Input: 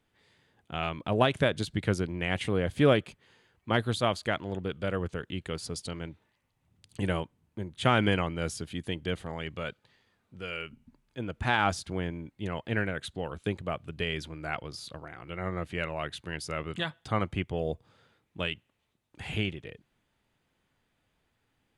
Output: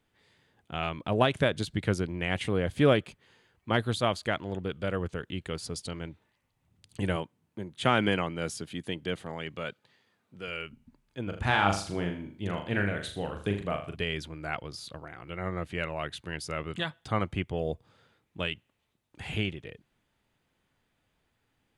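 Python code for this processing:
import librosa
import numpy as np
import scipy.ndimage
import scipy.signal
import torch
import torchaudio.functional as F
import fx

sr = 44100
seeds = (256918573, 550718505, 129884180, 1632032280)

y = fx.highpass(x, sr, hz=130.0, slope=12, at=(7.16, 10.48))
y = fx.room_flutter(y, sr, wall_m=6.8, rt60_s=0.44, at=(11.23, 13.96))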